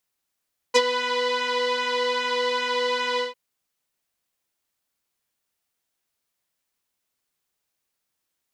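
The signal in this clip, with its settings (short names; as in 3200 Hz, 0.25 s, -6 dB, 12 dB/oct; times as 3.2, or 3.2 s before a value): synth patch with pulse-width modulation B4, interval +12 st, detune 23 cents, oscillator 2 level -2 dB, sub -19.5 dB, noise -26 dB, filter lowpass, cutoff 3700 Hz, Q 1.8, filter envelope 1 oct, filter decay 0.05 s, filter sustain 10%, attack 22 ms, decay 0.05 s, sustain -11 dB, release 0.15 s, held 2.45 s, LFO 2.5 Hz, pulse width 26%, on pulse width 16%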